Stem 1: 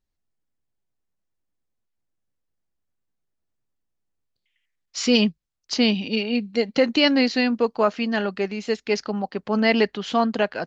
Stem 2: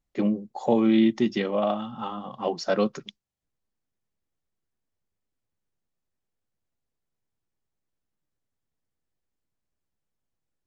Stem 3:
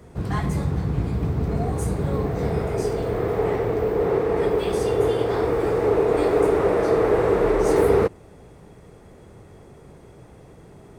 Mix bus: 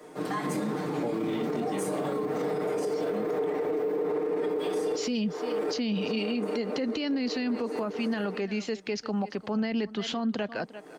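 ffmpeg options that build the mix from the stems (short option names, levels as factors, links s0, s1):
-filter_complex "[0:a]volume=0.944,asplit=3[s0][s1][s2];[s1]volume=0.0794[s3];[1:a]flanger=delay=22.5:depth=3.8:speed=0.29,adelay=350,volume=0.668[s4];[2:a]highpass=f=250:w=0.5412,highpass=f=250:w=1.3066,aecho=1:1:6.6:1,volume=1,asplit=2[s5][s6];[s6]volume=0.0794[s7];[s2]apad=whole_len=484861[s8];[s5][s8]sidechaincompress=threshold=0.01:ratio=6:attack=48:release=304[s9];[s3][s7]amix=inputs=2:normalize=0,aecho=0:1:346:1[s10];[s0][s4][s9][s10]amix=inputs=4:normalize=0,acrossover=split=310[s11][s12];[s12]acompressor=threshold=0.0501:ratio=6[s13];[s11][s13]amix=inputs=2:normalize=0,alimiter=limit=0.0794:level=0:latency=1:release=44"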